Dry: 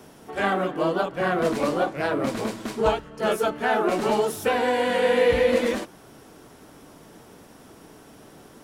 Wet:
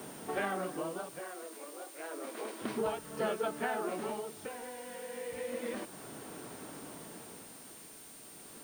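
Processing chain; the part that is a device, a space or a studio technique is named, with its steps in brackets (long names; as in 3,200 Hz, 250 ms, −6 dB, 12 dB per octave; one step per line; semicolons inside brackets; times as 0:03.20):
medium wave at night (band-pass filter 120–3,600 Hz; downward compressor 5 to 1, threshold −33 dBFS, peak gain reduction 16 dB; amplitude tremolo 0.31 Hz, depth 78%; steady tone 9,000 Hz −55 dBFS; white noise bed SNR 15 dB)
0:01.19–0:02.62: Chebyshev high-pass filter 330 Hz, order 3
level +1.5 dB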